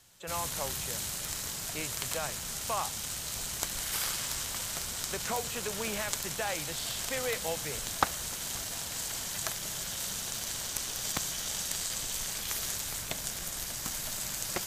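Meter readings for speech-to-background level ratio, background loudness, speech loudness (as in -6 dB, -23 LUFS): -5.0 dB, -33.5 LUFS, -38.5 LUFS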